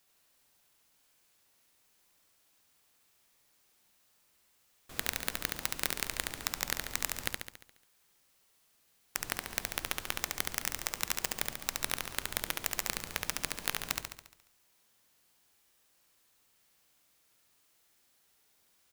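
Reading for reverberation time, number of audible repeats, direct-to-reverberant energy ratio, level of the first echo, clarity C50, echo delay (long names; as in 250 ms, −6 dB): no reverb audible, 7, no reverb audible, −3.5 dB, no reverb audible, 70 ms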